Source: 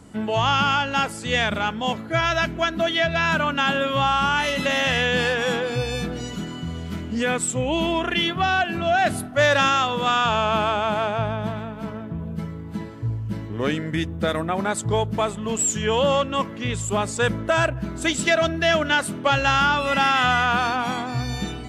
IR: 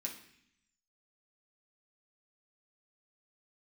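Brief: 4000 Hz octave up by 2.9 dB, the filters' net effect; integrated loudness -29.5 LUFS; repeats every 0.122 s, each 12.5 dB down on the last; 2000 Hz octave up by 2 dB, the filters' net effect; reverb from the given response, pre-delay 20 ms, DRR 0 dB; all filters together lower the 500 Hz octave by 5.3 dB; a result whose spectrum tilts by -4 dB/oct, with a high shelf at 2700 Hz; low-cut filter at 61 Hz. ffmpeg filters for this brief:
-filter_complex "[0:a]highpass=61,equalizer=f=500:t=o:g=-7,equalizer=f=2k:t=o:g=4.5,highshelf=f=2.7k:g=-8,equalizer=f=4k:t=o:g=8.5,aecho=1:1:122|244|366:0.237|0.0569|0.0137,asplit=2[a][b];[1:a]atrim=start_sample=2205,adelay=20[c];[b][c]afir=irnorm=-1:irlink=0,volume=1.5dB[d];[a][d]amix=inputs=2:normalize=0,volume=-11dB"

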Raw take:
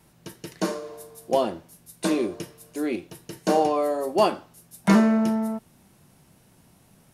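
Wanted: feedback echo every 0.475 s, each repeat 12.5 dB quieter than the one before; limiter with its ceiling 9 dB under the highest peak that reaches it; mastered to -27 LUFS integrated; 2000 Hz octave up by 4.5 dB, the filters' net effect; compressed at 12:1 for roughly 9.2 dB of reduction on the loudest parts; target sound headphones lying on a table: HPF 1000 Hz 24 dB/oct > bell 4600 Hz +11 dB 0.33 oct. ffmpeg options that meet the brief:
-af "equalizer=f=2k:t=o:g=5.5,acompressor=threshold=-21dB:ratio=12,alimiter=limit=-21dB:level=0:latency=1,highpass=f=1k:w=0.5412,highpass=f=1k:w=1.3066,equalizer=f=4.6k:t=o:w=0.33:g=11,aecho=1:1:475|950|1425:0.237|0.0569|0.0137,volume=12.5dB"

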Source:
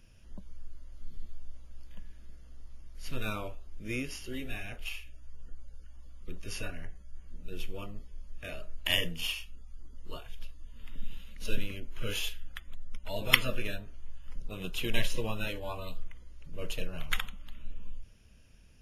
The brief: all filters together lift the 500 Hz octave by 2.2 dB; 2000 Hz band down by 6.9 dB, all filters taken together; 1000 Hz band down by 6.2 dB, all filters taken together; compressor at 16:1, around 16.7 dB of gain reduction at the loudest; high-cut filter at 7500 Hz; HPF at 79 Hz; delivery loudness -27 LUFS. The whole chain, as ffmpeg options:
-af "highpass=79,lowpass=7.5k,equalizer=f=500:t=o:g=5,equalizer=f=1k:t=o:g=-7.5,equalizer=f=2k:t=o:g=-7.5,acompressor=threshold=-38dB:ratio=16,volume=18.5dB"

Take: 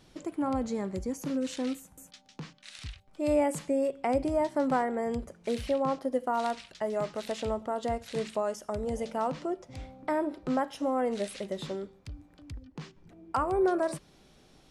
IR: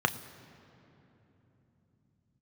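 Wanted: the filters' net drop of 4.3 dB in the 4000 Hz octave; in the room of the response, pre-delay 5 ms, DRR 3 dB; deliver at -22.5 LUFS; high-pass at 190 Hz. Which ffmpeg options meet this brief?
-filter_complex "[0:a]highpass=190,equalizer=f=4k:t=o:g=-5.5,asplit=2[a][b];[1:a]atrim=start_sample=2205,adelay=5[c];[b][c]afir=irnorm=-1:irlink=0,volume=-14dB[d];[a][d]amix=inputs=2:normalize=0,volume=7.5dB"

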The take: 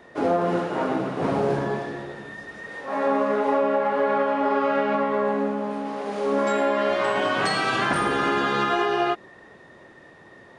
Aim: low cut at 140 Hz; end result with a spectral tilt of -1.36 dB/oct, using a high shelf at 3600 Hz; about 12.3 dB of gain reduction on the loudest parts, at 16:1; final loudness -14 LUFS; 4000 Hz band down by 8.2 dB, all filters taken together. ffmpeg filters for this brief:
-af "highpass=140,highshelf=f=3.6k:g=-8.5,equalizer=f=4k:t=o:g=-6,acompressor=threshold=-31dB:ratio=16,volume=21.5dB"

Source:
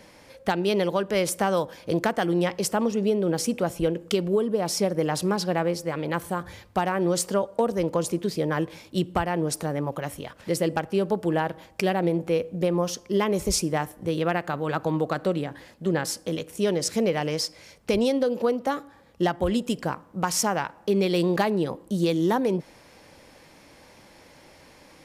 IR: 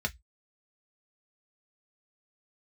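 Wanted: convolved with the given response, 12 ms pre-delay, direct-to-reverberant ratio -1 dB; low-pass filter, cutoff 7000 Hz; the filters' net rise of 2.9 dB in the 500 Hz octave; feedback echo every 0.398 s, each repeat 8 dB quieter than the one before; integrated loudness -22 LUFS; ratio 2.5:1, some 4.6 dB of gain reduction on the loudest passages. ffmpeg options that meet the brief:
-filter_complex "[0:a]lowpass=7k,equalizer=f=500:t=o:g=3.5,acompressor=threshold=-23dB:ratio=2.5,aecho=1:1:398|796|1194|1592|1990:0.398|0.159|0.0637|0.0255|0.0102,asplit=2[a][b];[1:a]atrim=start_sample=2205,adelay=12[c];[b][c]afir=irnorm=-1:irlink=0,volume=-4.5dB[d];[a][d]amix=inputs=2:normalize=0,volume=2dB"

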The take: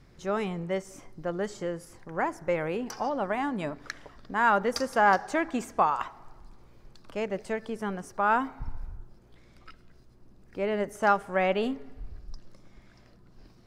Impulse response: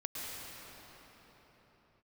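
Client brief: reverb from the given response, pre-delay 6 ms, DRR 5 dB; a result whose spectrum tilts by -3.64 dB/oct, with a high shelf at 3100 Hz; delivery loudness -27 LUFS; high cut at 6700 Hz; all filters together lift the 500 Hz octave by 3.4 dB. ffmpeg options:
-filter_complex "[0:a]lowpass=6.7k,equalizer=f=500:t=o:g=4,highshelf=f=3.1k:g=5,asplit=2[a][b];[1:a]atrim=start_sample=2205,adelay=6[c];[b][c]afir=irnorm=-1:irlink=0,volume=-7.5dB[d];[a][d]amix=inputs=2:normalize=0"

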